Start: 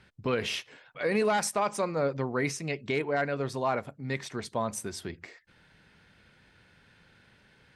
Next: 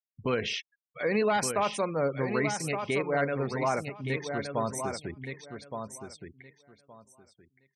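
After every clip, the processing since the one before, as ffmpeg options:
-af "anlmdn=0.01,afftfilt=real='re*gte(hypot(re,im),0.0112)':imag='im*gte(hypot(re,im),0.0112)':win_size=1024:overlap=0.75,aecho=1:1:1169|2338|3507:0.447|0.0804|0.0145"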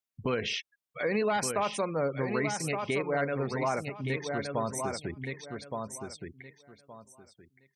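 -af "acompressor=threshold=-37dB:ratio=1.5,volume=3dB"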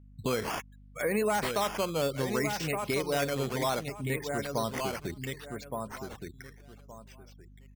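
-af "aresample=22050,aresample=44100,acrusher=samples=8:mix=1:aa=0.000001:lfo=1:lforange=8:lforate=0.66,aeval=exprs='val(0)+0.00251*(sin(2*PI*50*n/s)+sin(2*PI*2*50*n/s)/2+sin(2*PI*3*50*n/s)/3+sin(2*PI*4*50*n/s)/4+sin(2*PI*5*50*n/s)/5)':c=same"

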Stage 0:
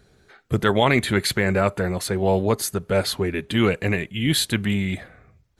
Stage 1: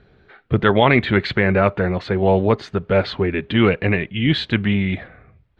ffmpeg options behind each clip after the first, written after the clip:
-af "lowpass=f=3.4k:w=0.5412,lowpass=f=3.4k:w=1.3066,volume=4dB"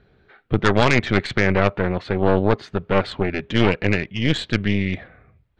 -af "aeval=exprs='0.891*(cos(1*acos(clip(val(0)/0.891,-1,1)))-cos(1*PI/2))+0.398*(cos(4*acos(clip(val(0)/0.891,-1,1)))-cos(4*PI/2))+0.0631*(cos(5*acos(clip(val(0)/0.891,-1,1)))-cos(5*PI/2))':c=same,volume=-6.5dB"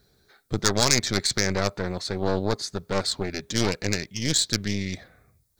-af "aexciter=amount=8.8:drive=9.9:freq=4.5k,volume=-7.5dB"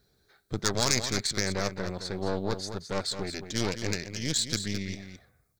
-af "aecho=1:1:214:0.335,volume=-5.5dB"

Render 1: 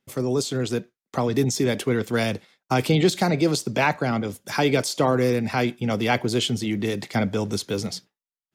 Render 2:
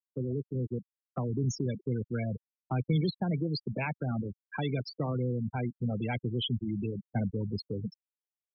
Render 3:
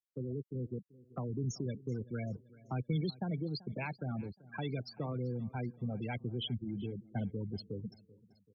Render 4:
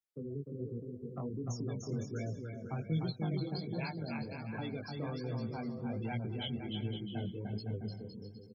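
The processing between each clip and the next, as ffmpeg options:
-filter_complex "[0:a]afftfilt=real='re*gte(hypot(re,im),0.158)':imag='im*gte(hypot(re,im),0.158)':win_size=1024:overlap=0.75,acrossover=split=180|3000[a][b][c];[b]acompressor=threshold=-38dB:ratio=2.5[d];[a][d][c]amix=inputs=3:normalize=0,volume=-2.5dB"
-af "aecho=1:1:385|770|1155:0.0891|0.0428|0.0205,volume=-6dB"
-af "aecho=1:1:300|510|657|759.9|831.9:0.631|0.398|0.251|0.158|0.1,flanger=delay=17.5:depth=4.2:speed=1.3,volume=1dB"

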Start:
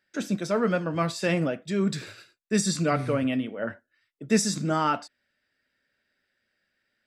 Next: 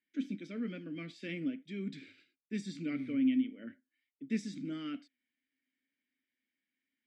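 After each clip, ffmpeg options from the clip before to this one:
-filter_complex "[0:a]asplit=3[a][b][c];[a]bandpass=f=270:t=q:w=8,volume=0dB[d];[b]bandpass=f=2.29k:t=q:w=8,volume=-6dB[e];[c]bandpass=f=3.01k:t=q:w=8,volume=-9dB[f];[d][e][f]amix=inputs=3:normalize=0"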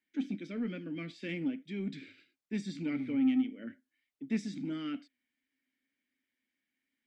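-filter_complex "[0:a]highshelf=f=7.1k:g=-6.5,asplit=2[a][b];[b]asoftclip=type=tanh:threshold=-35dB,volume=-7.5dB[c];[a][c]amix=inputs=2:normalize=0"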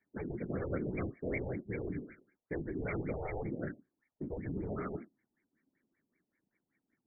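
-af "afftfilt=real='hypot(re,im)*cos(2*PI*random(0))':imag='hypot(re,im)*sin(2*PI*random(1))':win_size=512:overlap=0.75,afftfilt=real='re*lt(hypot(re,im),0.0355)':imag='im*lt(hypot(re,im),0.0355)':win_size=1024:overlap=0.75,afftfilt=real='re*lt(b*sr/1024,900*pow(2400/900,0.5+0.5*sin(2*PI*5.2*pts/sr)))':imag='im*lt(b*sr/1024,900*pow(2400/900,0.5+0.5*sin(2*PI*5.2*pts/sr)))':win_size=1024:overlap=0.75,volume=14dB"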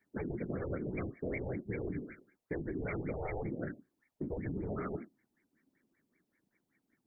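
-af "acompressor=threshold=-38dB:ratio=6,volume=4dB"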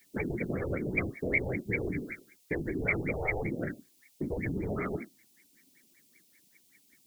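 -af "aexciter=amount=8.8:drive=3.5:freq=2.2k,volume=4.5dB"

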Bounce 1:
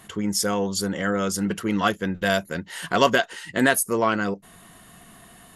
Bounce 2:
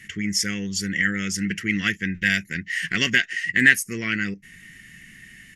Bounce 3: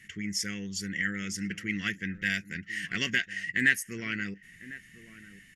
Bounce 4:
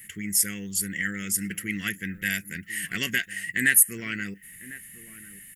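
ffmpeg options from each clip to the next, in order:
-af "firequalizer=gain_entry='entry(150,0);entry(350,-7);entry(580,-23);entry(920,-29);entry(1900,14);entry(3800,-6);entry(5500,4);entry(9700,-8)':delay=0.05:min_phase=1,volume=1dB"
-filter_complex "[0:a]asplit=2[a][b];[b]adelay=1050,volume=-16dB,highshelf=f=4k:g=-23.6[c];[a][c]amix=inputs=2:normalize=0,volume=-8.5dB"
-af "aexciter=amount=13.3:drive=6:freq=8.5k,volume=1.5dB"

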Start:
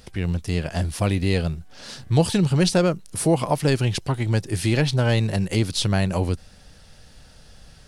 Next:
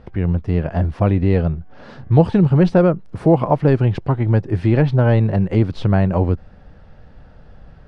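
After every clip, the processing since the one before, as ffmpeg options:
-af "lowpass=1.3k,volume=6dB"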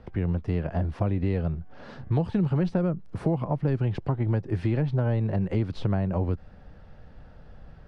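-filter_complex "[0:a]acrossover=split=240|980[a][b][c];[a]acompressor=threshold=-20dB:ratio=4[d];[b]acompressor=threshold=-26dB:ratio=4[e];[c]acompressor=threshold=-39dB:ratio=4[f];[d][e][f]amix=inputs=3:normalize=0,volume=-4.5dB"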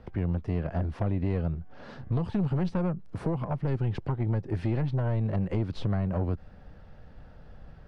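-af "aeval=exprs='(tanh(11.2*val(0)+0.35)-tanh(0.35))/11.2':c=same"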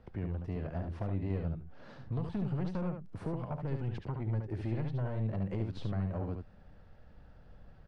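-af "aecho=1:1:72:0.531,volume=-8dB"

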